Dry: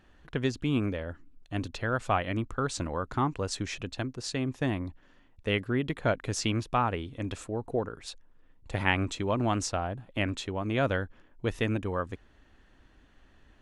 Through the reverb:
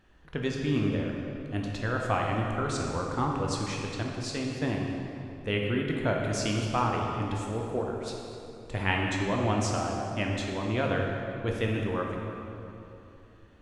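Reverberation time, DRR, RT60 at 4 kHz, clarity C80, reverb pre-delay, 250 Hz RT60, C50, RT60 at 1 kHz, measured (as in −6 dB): 2.9 s, −0.5 dB, 2.0 s, 2.5 dB, 10 ms, 3.3 s, 1.0 dB, 2.8 s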